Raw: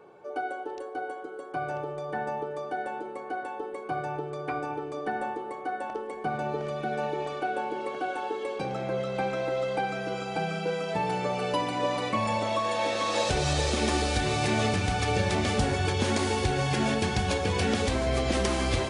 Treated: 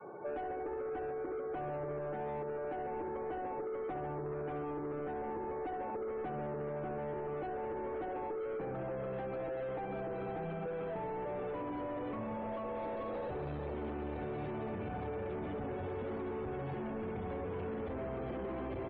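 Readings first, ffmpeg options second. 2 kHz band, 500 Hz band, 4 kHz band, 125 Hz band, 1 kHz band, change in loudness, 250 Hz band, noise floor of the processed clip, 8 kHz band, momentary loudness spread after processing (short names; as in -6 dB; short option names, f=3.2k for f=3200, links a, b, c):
-17.0 dB, -7.5 dB, under -25 dB, -13.0 dB, -11.5 dB, -10.5 dB, -9.5 dB, -40 dBFS, under -40 dB, 1 LU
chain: -filter_complex "[0:a]asplit=2[a][b];[b]asoftclip=type=hard:threshold=-23dB,volume=-4dB[c];[a][c]amix=inputs=2:normalize=0,lowpass=2.4k,adynamicequalizer=threshold=0.00891:dfrequency=390:dqfactor=1.6:tfrequency=390:tqfactor=1.6:attack=5:release=100:ratio=0.375:range=3:mode=boostabove:tftype=bell,aecho=1:1:68|136|204|272|340|408|476:0.398|0.219|0.12|0.0662|0.0364|0.02|0.011,alimiter=limit=-21dB:level=0:latency=1:release=196,aemphasis=mode=reproduction:type=50fm,aresample=11025,asoftclip=type=tanh:threshold=-31.5dB,aresample=44100,acrossover=split=88|980[d][e][f];[d]acompressor=threshold=-55dB:ratio=4[g];[e]acompressor=threshold=-39dB:ratio=4[h];[f]acompressor=threshold=-55dB:ratio=4[i];[g][h][i]amix=inputs=3:normalize=0,afftdn=nr=24:nf=-60,volume=1dB"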